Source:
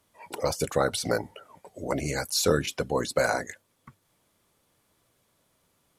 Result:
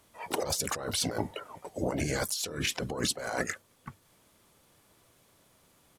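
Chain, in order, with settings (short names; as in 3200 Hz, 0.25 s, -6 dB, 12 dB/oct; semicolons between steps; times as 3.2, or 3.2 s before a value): negative-ratio compressor -33 dBFS, ratio -1; harmoniser -5 st -10 dB, +5 st -15 dB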